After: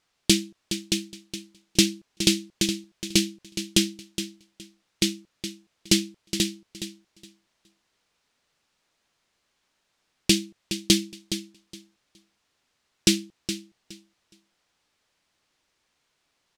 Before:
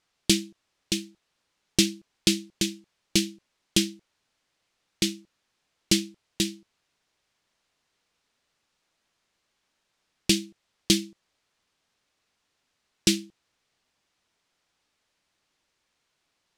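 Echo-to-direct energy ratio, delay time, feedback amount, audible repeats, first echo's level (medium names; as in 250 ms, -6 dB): -10.5 dB, 417 ms, 19%, 2, -10.5 dB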